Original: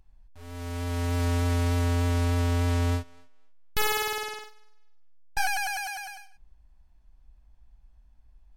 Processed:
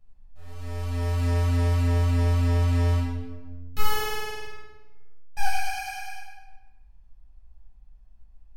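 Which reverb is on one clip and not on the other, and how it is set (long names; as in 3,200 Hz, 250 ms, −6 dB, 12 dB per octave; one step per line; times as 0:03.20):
rectangular room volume 740 cubic metres, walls mixed, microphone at 6.3 metres
level −13.5 dB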